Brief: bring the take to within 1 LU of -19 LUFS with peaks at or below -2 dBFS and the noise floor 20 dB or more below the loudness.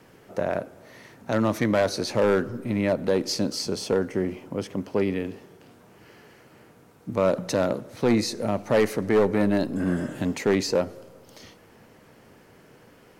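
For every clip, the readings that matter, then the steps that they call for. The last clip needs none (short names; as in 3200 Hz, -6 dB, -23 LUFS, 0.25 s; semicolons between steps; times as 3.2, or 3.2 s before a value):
loudness -25.5 LUFS; peak -14.0 dBFS; loudness target -19.0 LUFS
-> gain +6.5 dB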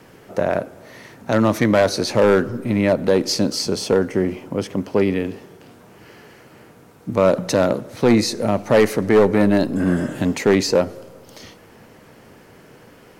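loudness -19.0 LUFS; peak -7.5 dBFS; noise floor -48 dBFS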